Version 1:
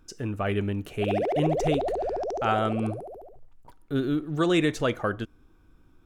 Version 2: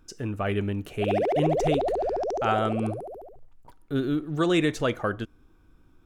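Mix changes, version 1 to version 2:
background +3.5 dB; reverb: off

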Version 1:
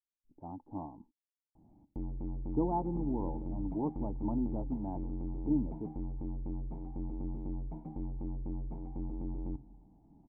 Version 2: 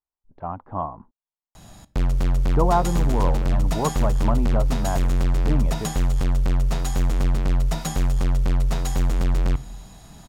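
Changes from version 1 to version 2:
background +4.5 dB; master: remove cascade formant filter u

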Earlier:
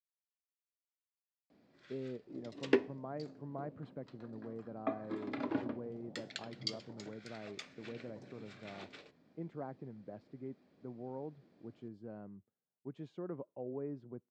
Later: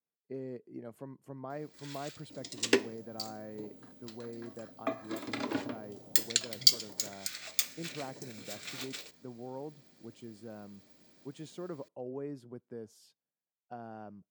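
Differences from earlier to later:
speech: entry -1.60 s; master: remove tape spacing loss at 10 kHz 36 dB

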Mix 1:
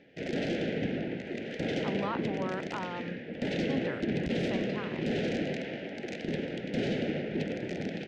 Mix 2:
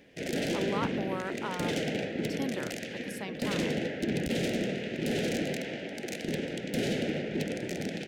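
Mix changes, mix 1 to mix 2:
speech: entry -1.30 s; master: remove distance through air 160 m

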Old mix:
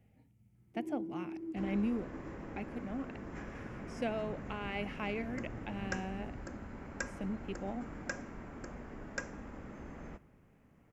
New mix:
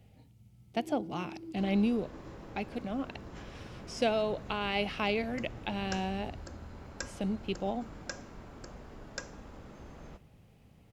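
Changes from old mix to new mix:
speech +9.0 dB; master: add graphic EQ 250/2000/4000 Hz -5/-7/+11 dB

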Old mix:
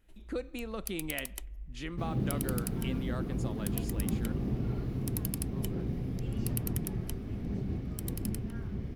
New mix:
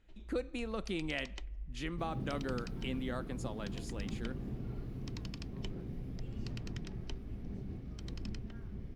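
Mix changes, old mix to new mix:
first sound: add inverse Chebyshev low-pass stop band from 9.9 kHz, stop band 40 dB; second sound -9.0 dB

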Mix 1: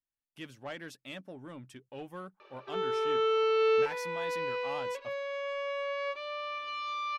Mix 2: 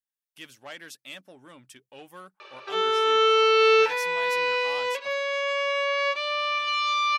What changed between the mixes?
background +9.5 dB; master: add tilt EQ +3 dB/octave

